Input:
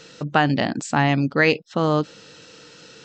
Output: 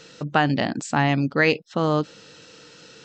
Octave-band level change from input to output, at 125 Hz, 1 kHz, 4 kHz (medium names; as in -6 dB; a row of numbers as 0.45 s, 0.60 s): -1.5 dB, -1.5 dB, -1.5 dB